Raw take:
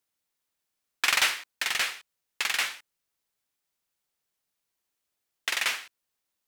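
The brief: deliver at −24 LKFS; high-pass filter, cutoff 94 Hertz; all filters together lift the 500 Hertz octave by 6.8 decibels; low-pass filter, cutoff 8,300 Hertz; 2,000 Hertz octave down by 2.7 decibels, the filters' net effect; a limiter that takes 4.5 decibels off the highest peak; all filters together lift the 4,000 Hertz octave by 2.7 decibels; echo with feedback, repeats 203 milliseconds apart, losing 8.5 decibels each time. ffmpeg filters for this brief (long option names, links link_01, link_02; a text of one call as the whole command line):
ffmpeg -i in.wav -af "highpass=94,lowpass=8300,equalizer=frequency=500:width_type=o:gain=9,equalizer=frequency=2000:width_type=o:gain=-5.5,equalizer=frequency=4000:width_type=o:gain=5.5,alimiter=limit=-13.5dB:level=0:latency=1,aecho=1:1:203|406|609|812:0.376|0.143|0.0543|0.0206,volume=4.5dB" out.wav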